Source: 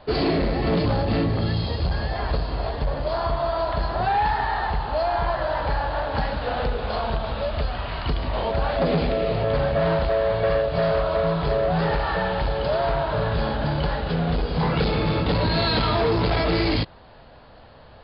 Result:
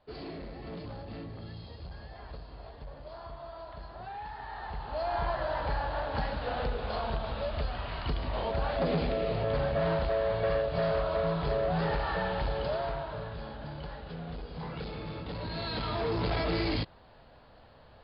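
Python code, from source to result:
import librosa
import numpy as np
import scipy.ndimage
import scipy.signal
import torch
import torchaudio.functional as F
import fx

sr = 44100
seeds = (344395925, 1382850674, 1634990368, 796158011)

y = fx.gain(x, sr, db=fx.line((4.3, -20.0), (5.18, -7.5), (12.59, -7.5), (13.37, -17.0), (15.3, -17.0), (16.28, -8.5)))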